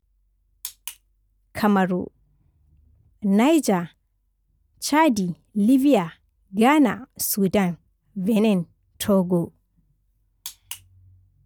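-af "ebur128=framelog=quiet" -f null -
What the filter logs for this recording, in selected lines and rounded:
Integrated loudness:
  I:         -21.2 LUFS
  Threshold: -33.5 LUFS
Loudness range:
  LRA:         4.7 LU
  Threshold: -42.9 LUFS
  LRA low:   -25.6 LUFS
  LRA high:  -21.0 LUFS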